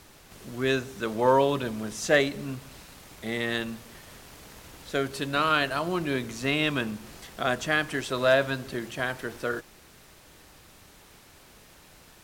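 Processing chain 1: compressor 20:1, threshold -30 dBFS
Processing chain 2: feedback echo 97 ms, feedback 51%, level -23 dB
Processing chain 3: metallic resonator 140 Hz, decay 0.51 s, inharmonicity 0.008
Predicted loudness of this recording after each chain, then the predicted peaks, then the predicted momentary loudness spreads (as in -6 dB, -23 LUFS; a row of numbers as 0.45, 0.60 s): -36.5, -27.5, -40.0 LUFS; -17.5, -9.0, -20.0 dBFS; 18, 23, 18 LU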